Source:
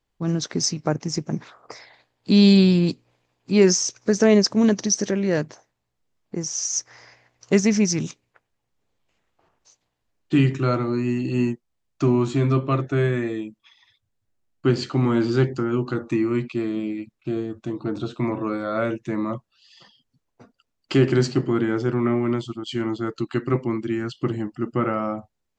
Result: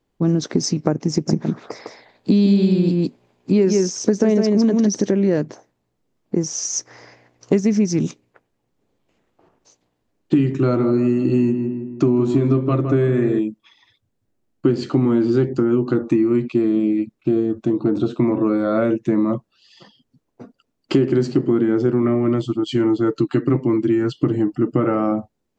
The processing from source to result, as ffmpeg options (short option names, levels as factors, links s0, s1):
-filter_complex "[0:a]asettb=1/sr,asplit=3[s0][s1][s2];[s0]atrim=end=1.124[s3];[s1]atrim=start=1.12:end=5.01,asetpts=PTS-STARTPTS,afade=t=in:d=0.004:c=qsin,afade=t=out:st=3.886:d=0.004:c=qsin,aecho=1:1:155:0.668,atrim=end_sample=171549[s4];[s2]atrim=start=5.006[s5];[s3][s4]acrossfade=d=0.004:c1=hsin:c2=qsin[s6];[s6][s5]acrossfade=d=0.004:c1=qsin:c2=hsin,asettb=1/sr,asplit=3[s7][s8][s9];[s7]atrim=end=10.564[s10];[s8]atrim=start=10.56:end=13.39,asetpts=PTS-STARTPTS,afade=t=in:d=0.004:c=qsin,afade=t=out:st=2.826:d=0.004:c=qsin,asplit=2[s11][s12];[s12]adelay=161,lowpass=f=2000:p=1,volume=0.316,asplit=2[s13][s14];[s14]adelay=161,lowpass=f=2000:p=1,volume=0.49,asplit=2[s15][s16];[s16]adelay=161,lowpass=f=2000:p=1,volume=0.49,asplit=2[s17][s18];[s18]adelay=161,lowpass=f=2000:p=1,volume=0.49,asplit=2[s19][s20];[s20]adelay=161,lowpass=f=2000:p=1,volume=0.49[s21];[s11][s13][s15][s17][s19][s21]amix=inputs=6:normalize=0,atrim=end_sample=124803[s22];[s9]atrim=start=13.386[s23];[s10][s22]acrossfade=d=0.004:c1=hsin:c2=qsin[s24];[s24][s23]acrossfade=d=0.004:c1=qsin:c2=hsin,asettb=1/sr,asplit=3[s25][s26][s27];[s25]atrim=end=22.014[s28];[s26]atrim=start=22.01:end=25.12,asetpts=PTS-STARTPTS,afade=t=in:d=0.004:c=qsin,afade=t=out:st=3.106:d=0.004:c=qsin,aecho=1:1:6.7:0.46,atrim=end_sample=137151[s29];[s27]atrim=start=25.116[s30];[s28][s29]acrossfade=d=0.004:c1=hsin:c2=qsin[s31];[s31][s30]acrossfade=d=0.004:c1=qsin:c2=hsin,equalizer=f=290:w=0.5:g=11.5,acompressor=threshold=0.178:ratio=5,volume=1.12"